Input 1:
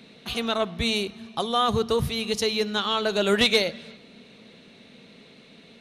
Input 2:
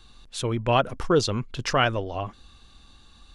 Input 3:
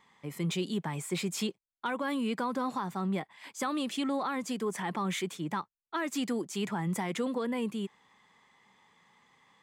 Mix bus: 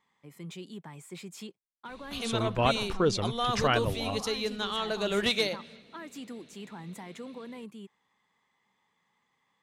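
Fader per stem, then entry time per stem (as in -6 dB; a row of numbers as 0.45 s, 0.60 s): -7.0 dB, -5.0 dB, -10.5 dB; 1.85 s, 1.90 s, 0.00 s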